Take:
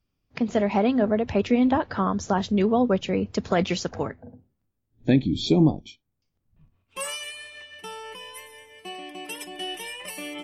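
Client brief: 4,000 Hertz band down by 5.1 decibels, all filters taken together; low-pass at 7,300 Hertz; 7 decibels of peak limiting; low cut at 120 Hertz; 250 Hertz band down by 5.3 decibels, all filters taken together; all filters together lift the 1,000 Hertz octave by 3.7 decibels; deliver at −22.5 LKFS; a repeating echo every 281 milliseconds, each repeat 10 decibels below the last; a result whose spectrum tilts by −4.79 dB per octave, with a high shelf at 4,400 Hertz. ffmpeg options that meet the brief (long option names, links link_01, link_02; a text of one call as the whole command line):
ffmpeg -i in.wav -af "highpass=120,lowpass=7300,equalizer=frequency=250:width_type=o:gain=-6.5,equalizer=frequency=1000:width_type=o:gain=6,equalizer=frequency=4000:width_type=o:gain=-4.5,highshelf=frequency=4400:gain=-6,alimiter=limit=-16dB:level=0:latency=1,aecho=1:1:281|562|843|1124:0.316|0.101|0.0324|0.0104,volume=7dB" out.wav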